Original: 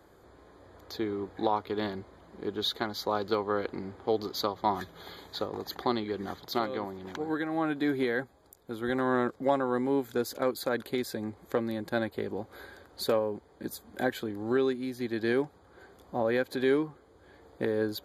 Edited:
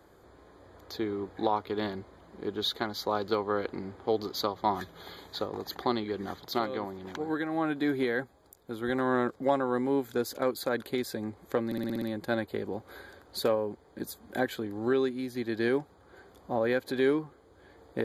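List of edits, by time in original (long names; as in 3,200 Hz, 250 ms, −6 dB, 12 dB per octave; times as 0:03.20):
0:11.66: stutter 0.06 s, 7 plays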